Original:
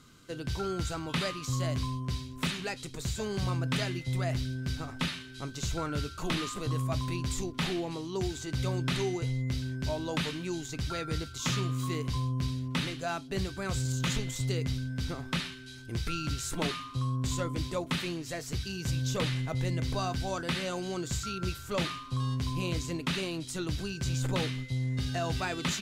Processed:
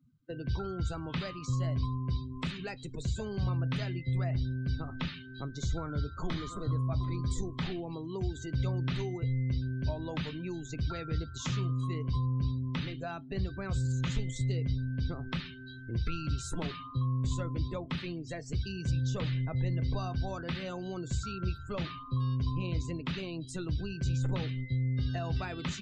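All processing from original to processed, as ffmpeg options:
ffmpeg -i in.wav -filter_complex "[0:a]asettb=1/sr,asplit=3[link_01][link_02][link_03];[link_01]atrim=end=5.424[link_04];[link_02]atrim=start=5.42:end=7.63,asetpts=PTS-STARTPTS,afade=type=in:duration=0.004:curve=qsin,afade=type=out:start_time=2.206:duration=0.004:curve=qsin,bandreject=frequency=2700:width=5.7,aecho=1:1:743:0.168,atrim=end_sample=97461[link_05];[link_03]atrim=start=7.626[link_06];[link_04][link_05]acrossfade=duration=0.004:curve1=hsin:curve2=qsin[link_07];[link_07][link_06]acrossfade=duration=0.004:curve1=qsin:curve2=hsin,afftdn=noise_reduction=36:noise_floor=-43,highshelf=frequency=6700:gain=-7.5,acrossover=split=140[link_08][link_09];[link_09]acompressor=threshold=-43dB:ratio=2.5[link_10];[link_08][link_10]amix=inputs=2:normalize=0,volume=3dB" out.wav

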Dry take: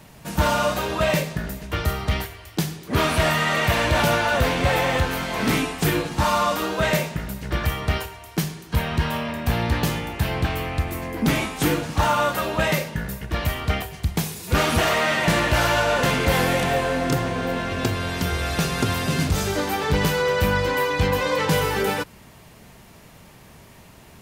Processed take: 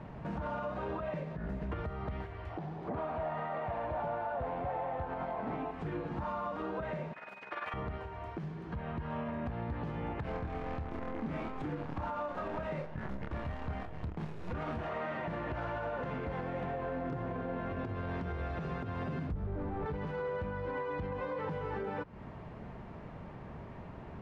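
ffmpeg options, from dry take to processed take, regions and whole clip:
ffmpeg -i in.wav -filter_complex "[0:a]asettb=1/sr,asplit=3[link_01][link_02][link_03];[link_01]atrim=end=2.504[link_04];[link_02]atrim=start=2.5:end=5.71,asetpts=PTS-STARTPTS,afade=type=in:duration=0.004:curve=qsin,afade=type=out:start_time=3.206:duration=0.004:curve=qsin,acrossover=split=6000[link_05][link_06];[link_06]acompressor=threshold=-47dB:ratio=4:attack=1:release=60[link_07];[link_05][link_07]amix=inputs=2:normalize=0,equalizer=frequency=750:width_type=o:width=0.96:gain=12.5,asoftclip=type=hard:threshold=-7.5dB[link_08];[link_03]atrim=start=5.706[link_09];[link_04][link_08]acrossfade=duration=0.004:curve1=hsin:curve2=qsin[link_10];[link_10][link_09]acrossfade=duration=0.004:curve1=qsin:curve2=hsin,asettb=1/sr,asplit=3[link_11][link_12][link_13];[link_11]atrim=end=7.134[link_14];[link_12]atrim=start=7.13:end=7.74,asetpts=PTS-STARTPTS,afade=type=in:duration=0.004:curve=qsin,afade=type=out:start_time=0.606:duration=0.004:curve=qsin,highpass=940,tremolo=f=20:d=0.75,aeval=exprs='val(0)+0.00794*sin(2*PI*2500*n/s)':channel_layout=same[link_15];[link_13]atrim=start=7.736[link_16];[link_14][link_15]acrossfade=duration=0.004:curve1=hsin:curve2=qsin[link_17];[link_17][link_16]acrossfade=duration=0.004:curve1=qsin:curve2=hsin,asettb=1/sr,asplit=3[link_18][link_19][link_20];[link_18]atrim=end=10.244[link_21];[link_19]atrim=start=10.24:end=14.87,asetpts=PTS-STARTPTS,afade=type=in:duration=0.004:curve=qsin,afade=type=out:start_time=4.626:duration=0.004:curve=qsin,acrusher=bits=5:dc=4:mix=0:aa=0.000001,asplit=2[link_22][link_23];[link_23]adelay=27,volume=-2.5dB[link_24];[link_22][link_24]amix=inputs=2:normalize=0,atrim=end_sample=204183[link_25];[link_20]atrim=start=14.866[link_26];[link_21][link_25]acrossfade=duration=0.004:curve1=hsin:curve2=qsin[link_27];[link_27][link_26]acrossfade=duration=0.004:curve1=qsin:curve2=hsin,asettb=1/sr,asplit=3[link_28][link_29][link_30];[link_28]atrim=end=19.324[link_31];[link_29]atrim=start=19.32:end=19.86,asetpts=PTS-STARTPTS,afade=type=in:duration=0.004:curve=qsin,afade=type=out:start_time=0.536:duration=0.004:curve=qsin,volume=27dB,asoftclip=hard,volume=-27dB,aemphasis=mode=reproduction:type=riaa[link_32];[link_30]atrim=start=19.856[link_33];[link_31][link_32]acrossfade=duration=0.004:curve1=hsin:curve2=qsin[link_34];[link_34][link_33]acrossfade=duration=0.004:curve1=qsin:curve2=hsin,lowpass=1300,acompressor=threshold=-34dB:ratio=12,alimiter=level_in=7dB:limit=-24dB:level=0:latency=1:release=59,volume=-7dB,volume=2dB" out.wav

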